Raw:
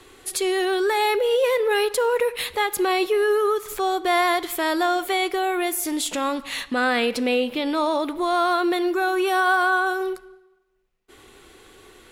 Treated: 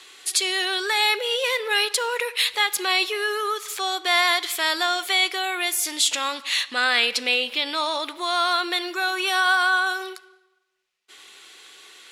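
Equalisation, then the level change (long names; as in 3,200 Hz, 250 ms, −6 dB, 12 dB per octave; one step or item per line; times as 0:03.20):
resonant band-pass 4,400 Hz, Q 0.78
+9.0 dB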